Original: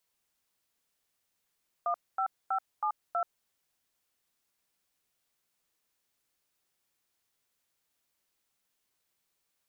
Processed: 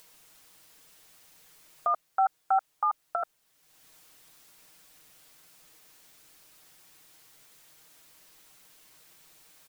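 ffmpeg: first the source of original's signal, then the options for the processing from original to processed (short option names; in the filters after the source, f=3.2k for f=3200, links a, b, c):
-f lavfi -i "aevalsrc='0.0335*clip(min(mod(t,0.322),0.082-mod(t,0.322))/0.002,0,1)*(eq(floor(t/0.322),0)*(sin(2*PI*697*mod(t,0.322))+sin(2*PI*1209*mod(t,0.322)))+eq(floor(t/0.322),1)*(sin(2*PI*770*mod(t,0.322))+sin(2*PI*1336*mod(t,0.322)))+eq(floor(t/0.322),2)*(sin(2*PI*770*mod(t,0.322))+sin(2*PI*1336*mod(t,0.322)))+eq(floor(t/0.322),3)*(sin(2*PI*852*mod(t,0.322))+sin(2*PI*1209*mod(t,0.322)))+eq(floor(t/0.322),4)*(sin(2*PI*697*mod(t,0.322))+sin(2*PI*1336*mod(t,0.322))))':d=1.61:s=44100"
-filter_complex "[0:a]aecho=1:1:6.4:0.61,asplit=2[a][b];[b]acompressor=mode=upward:threshold=-43dB:ratio=2.5,volume=1dB[c];[a][c]amix=inputs=2:normalize=0"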